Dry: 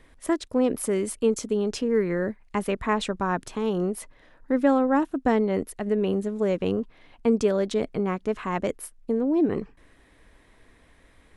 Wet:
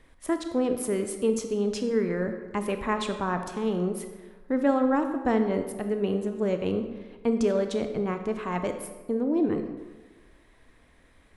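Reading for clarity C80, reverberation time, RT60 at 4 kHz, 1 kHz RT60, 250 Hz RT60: 9.5 dB, 1.3 s, 0.85 s, 1.3 s, 1.3 s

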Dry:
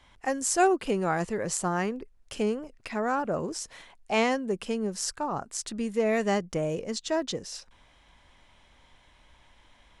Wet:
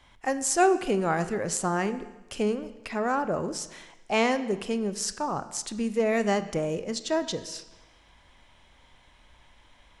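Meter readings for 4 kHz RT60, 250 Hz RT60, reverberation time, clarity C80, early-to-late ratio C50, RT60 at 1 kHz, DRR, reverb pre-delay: 1.1 s, 1.1 s, 1.1 s, 15.5 dB, 13.5 dB, 1.1 s, 12.0 dB, 25 ms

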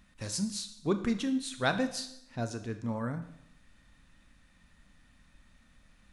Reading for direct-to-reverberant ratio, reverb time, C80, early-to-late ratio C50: 8.5 dB, 0.75 s, 14.0 dB, 11.5 dB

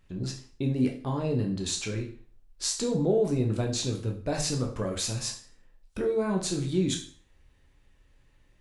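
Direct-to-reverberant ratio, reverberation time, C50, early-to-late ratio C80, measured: 1.0 dB, 0.45 s, 8.5 dB, 13.5 dB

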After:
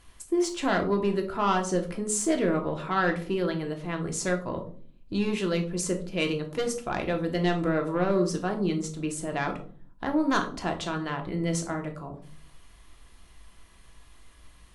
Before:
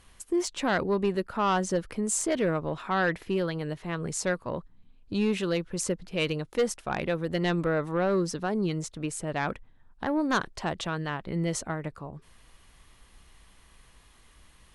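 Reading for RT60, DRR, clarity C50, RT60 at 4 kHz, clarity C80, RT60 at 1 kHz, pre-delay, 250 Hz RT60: 0.50 s, 3.5 dB, 11.5 dB, 0.30 s, 15.5 dB, 0.40 s, 3 ms, 0.85 s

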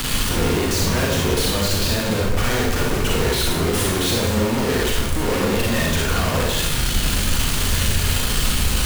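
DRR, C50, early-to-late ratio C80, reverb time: -3.0 dB, -0.5 dB, 3.5 dB, 0.90 s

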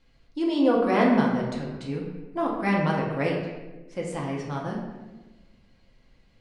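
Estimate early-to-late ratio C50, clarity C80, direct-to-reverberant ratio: 3.0 dB, 5.0 dB, -2.5 dB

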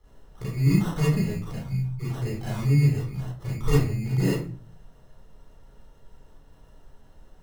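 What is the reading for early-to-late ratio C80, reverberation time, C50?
6.5 dB, 0.40 s, -1.0 dB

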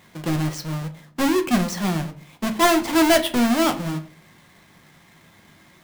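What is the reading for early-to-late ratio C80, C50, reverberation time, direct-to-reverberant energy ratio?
19.5 dB, 14.5 dB, 0.50 s, 5.5 dB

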